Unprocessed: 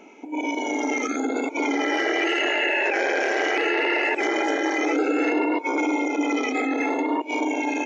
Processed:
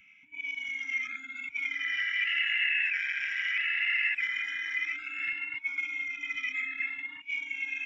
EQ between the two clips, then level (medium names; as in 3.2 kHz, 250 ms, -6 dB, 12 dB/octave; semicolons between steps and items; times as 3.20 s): Savitzky-Golay filter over 25 samples; elliptic band-stop 130–2000 Hz, stop band 70 dB; -1.0 dB